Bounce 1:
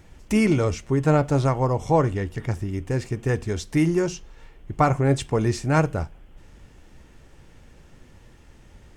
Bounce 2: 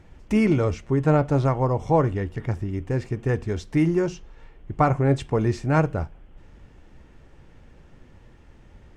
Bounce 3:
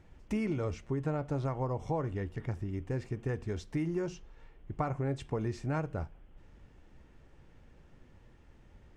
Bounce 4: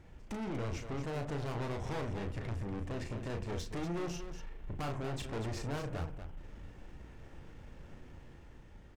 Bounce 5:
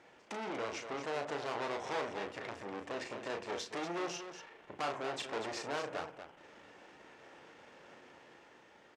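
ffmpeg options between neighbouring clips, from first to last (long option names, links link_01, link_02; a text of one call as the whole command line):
ffmpeg -i in.wav -af "lowpass=frequency=2400:poles=1" out.wav
ffmpeg -i in.wav -af "acompressor=threshold=-21dB:ratio=6,volume=-8dB" out.wav
ffmpeg -i in.wav -af "dynaudnorm=framelen=130:gausssize=11:maxgain=4dB,aeval=exprs='(tanh(100*val(0)+0.35)-tanh(0.35))/100':channel_layout=same,aecho=1:1:34.99|239.1:0.501|0.355,volume=3dB" out.wav
ffmpeg -i in.wav -af "highpass=470,lowpass=7000,volume=5dB" out.wav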